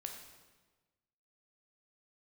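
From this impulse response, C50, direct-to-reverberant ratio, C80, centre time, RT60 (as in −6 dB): 5.5 dB, 2.5 dB, 7.0 dB, 35 ms, 1.3 s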